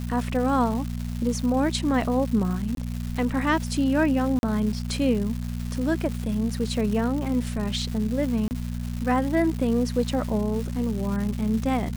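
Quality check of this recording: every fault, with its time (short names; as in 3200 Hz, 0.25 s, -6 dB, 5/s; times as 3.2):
crackle 370/s -31 dBFS
hum 60 Hz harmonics 4 -30 dBFS
2.75–2.77 gap 22 ms
4.39–4.43 gap 41 ms
8.48–8.51 gap 29 ms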